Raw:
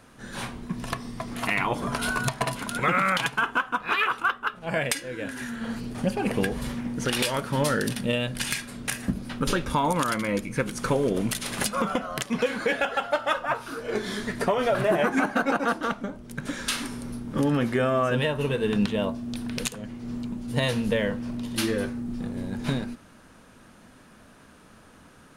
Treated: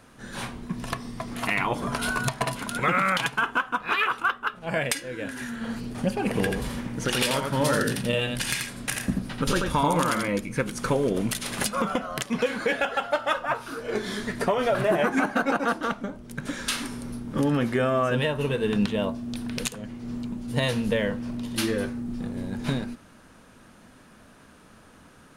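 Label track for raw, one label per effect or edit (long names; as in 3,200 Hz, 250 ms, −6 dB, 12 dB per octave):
6.270000	10.280000	single-tap delay 85 ms −4 dB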